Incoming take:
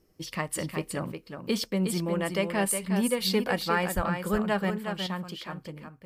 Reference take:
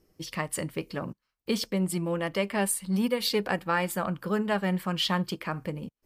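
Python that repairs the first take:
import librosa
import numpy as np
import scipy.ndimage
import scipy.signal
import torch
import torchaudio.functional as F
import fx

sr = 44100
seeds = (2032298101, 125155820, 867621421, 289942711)

y = fx.highpass(x, sr, hz=140.0, slope=24, at=(3.95, 4.07), fade=0.02)
y = fx.fix_echo_inverse(y, sr, delay_ms=363, level_db=-7.0)
y = fx.fix_level(y, sr, at_s=4.7, step_db=7.5)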